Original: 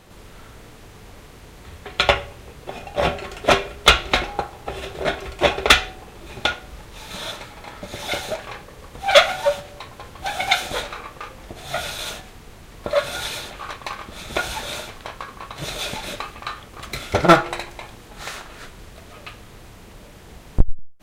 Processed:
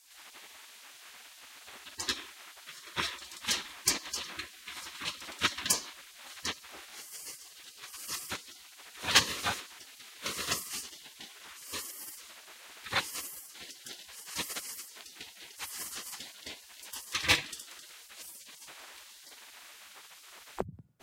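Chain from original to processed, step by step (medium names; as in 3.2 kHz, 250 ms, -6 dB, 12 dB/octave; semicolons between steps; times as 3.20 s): frequency shift +65 Hz; spectral gate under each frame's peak -20 dB weak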